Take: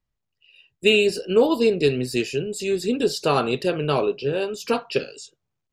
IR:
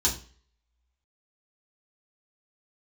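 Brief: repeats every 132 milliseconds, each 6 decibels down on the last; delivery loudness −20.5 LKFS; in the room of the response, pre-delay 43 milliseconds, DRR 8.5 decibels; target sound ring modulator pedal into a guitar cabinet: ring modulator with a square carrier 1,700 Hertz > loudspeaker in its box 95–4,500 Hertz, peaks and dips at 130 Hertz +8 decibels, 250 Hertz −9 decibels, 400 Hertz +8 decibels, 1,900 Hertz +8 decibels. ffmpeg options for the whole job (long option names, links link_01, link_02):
-filter_complex "[0:a]aecho=1:1:132|264|396|528|660|792:0.501|0.251|0.125|0.0626|0.0313|0.0157,asplit=2[link_01][link_02];[1:a]atrim=start_sample=2205,adelay=43[link_03];[link_02][link_03]afir=irnorm=-1:irlink=0,volume=-18dB[link_04];[link_01][link_04]amix=inputs=2:normalize=0,aeval=exprs='val(0)*sgn(sin(2*PI*1700*n/s))':channel_layout=same,highpass=95,equalizer=frequency=130:width_type=q:width=4:gain=8,equalizer=frequency=250:width_type=q:width=4:gain=-9,equalizer=frequency=400:width_type=q:width=4:gain=8,equalizer=frequency=1900:width_type=q:width=4:gain=8,lowpass=frequency=4500:width=0.5412,lowpass=frequency=4500:width=1.3066,volume=-5dB"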